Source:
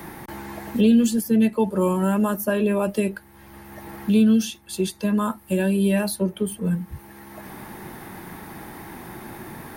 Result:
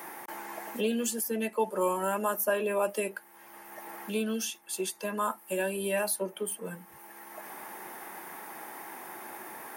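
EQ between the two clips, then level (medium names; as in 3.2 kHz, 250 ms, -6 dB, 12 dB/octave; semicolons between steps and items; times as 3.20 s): high-pass 580 Hz 12 dB/octave; peaking EQ 1.7 kHz -2.5 dB 1.7 oct; peaking EQ 4 kHz -8 dB 0.59 oct; 0.0 dB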